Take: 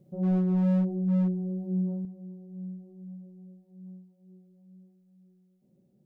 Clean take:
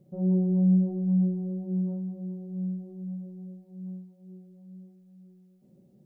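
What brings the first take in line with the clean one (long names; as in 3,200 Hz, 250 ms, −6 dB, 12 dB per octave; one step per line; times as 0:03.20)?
clipped peaks rebuilt −21.5 dBFS
level correction +7 dB, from 0:02.05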